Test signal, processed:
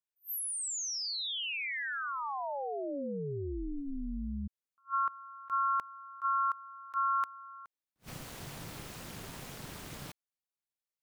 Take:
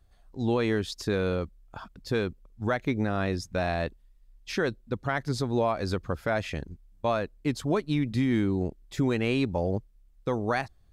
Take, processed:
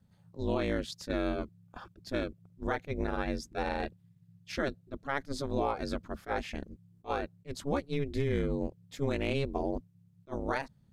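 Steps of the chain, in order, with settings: ring modulator 140 Hz; attack slew limiter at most 390 dB/s; gain -2 dB

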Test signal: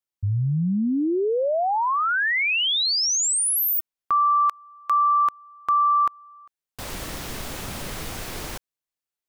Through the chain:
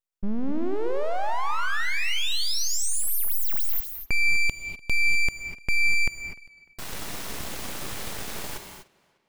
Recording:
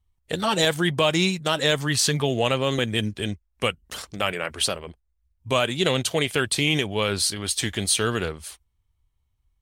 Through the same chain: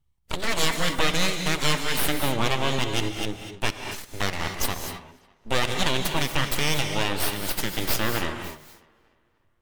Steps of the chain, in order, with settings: full-wave rectifier; tape echo 0.298 s, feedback 46%, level -22 dB, low-pass 4600 Hz; non-linear reverb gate 0.27 s rising, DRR 5.5 dB

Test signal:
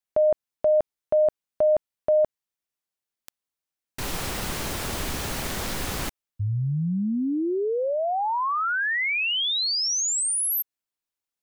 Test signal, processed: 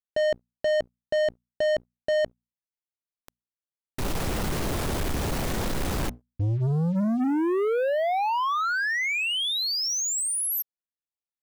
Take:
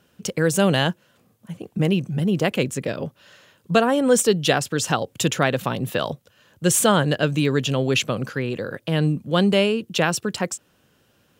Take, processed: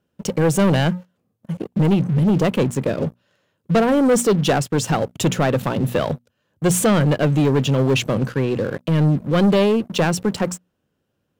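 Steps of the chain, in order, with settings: tilt shelf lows +5 dB, about 920 Hz; notches 60/120/180/240 Hz; sample leveller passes 3; gain -7.5 dB

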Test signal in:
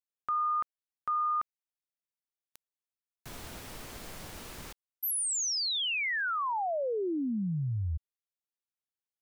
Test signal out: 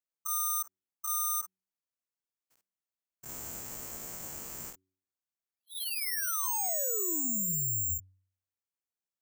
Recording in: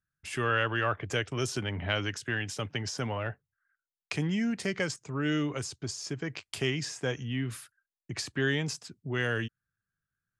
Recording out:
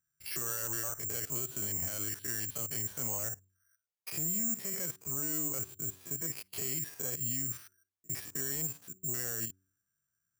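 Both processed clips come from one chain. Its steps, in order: stepped spectrum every 50 ms; HPF 74 Hz 6 dB/oct; high shelf 2700 Hz -7.5 dB; compressor 1.5:1, threshold -39 dBFS; limiter -33 dBFS; careless resampling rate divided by 6×, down filtered, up zero stuff; soft clip -20 dBFS; de-hum 93.93 Hz, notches 4

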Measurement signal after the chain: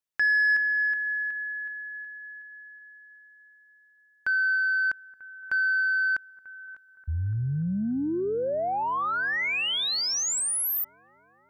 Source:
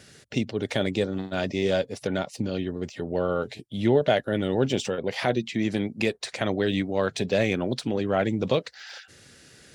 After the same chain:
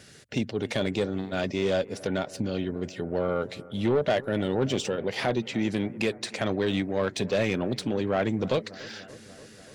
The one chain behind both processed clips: soft clip -17 dBFS; analogue delay 0.291 s, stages 4096, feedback 74%, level -20.5 dB

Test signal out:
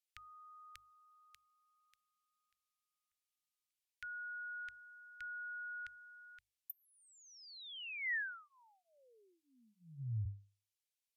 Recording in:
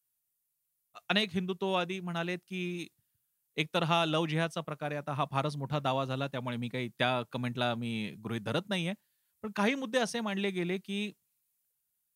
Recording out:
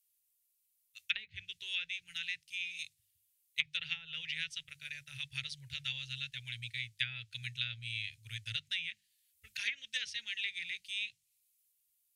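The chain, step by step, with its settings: inverse Chebyshev band-stop 180–1200 Hz, stop band 40 dB; treble ducked by the level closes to 910 Hz, closed at -30 dBFS; low shelf 180 Hz -4.5 dB; notches 50/100/150/200 Hz; gain +4 dB

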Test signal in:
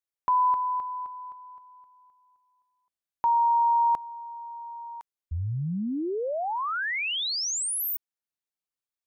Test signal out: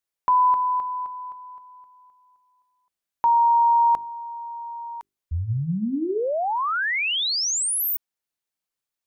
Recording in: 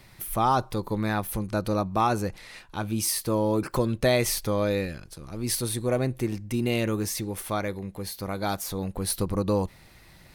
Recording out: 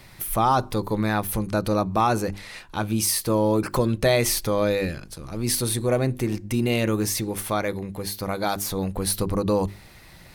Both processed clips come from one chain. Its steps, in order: in parallel at -2 dB: limiter -20 dBFS; on the sum: notches 50/100/150/200/250/300/350/400 Hz

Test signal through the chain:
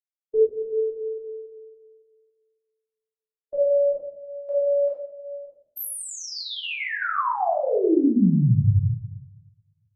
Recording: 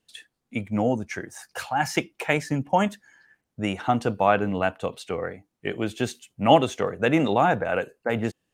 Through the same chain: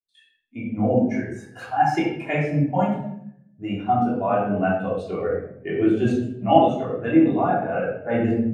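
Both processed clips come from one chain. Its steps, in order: vocal rider within 4 dB 0.5 s; shoebox room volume 520 m³, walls mixed, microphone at 3.2 m; spectral expander 1.5:1; gain -3 dB

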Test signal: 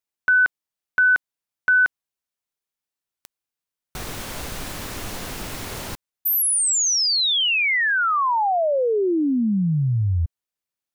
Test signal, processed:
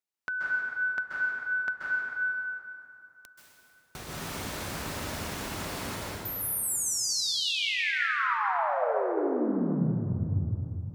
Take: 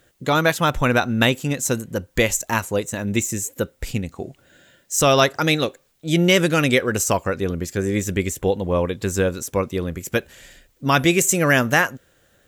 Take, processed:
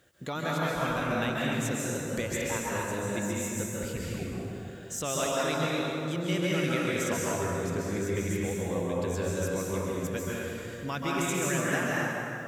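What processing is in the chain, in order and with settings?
HPF 61 Hz; high shelf 12000 Hz -4.5 dB; compressor 2:1, threshold -37 dBFS; plate-style reverb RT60 2.9 s, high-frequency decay 0.6×, pre-delay 0.12 s, DRR -6 dB; gain -5 dB

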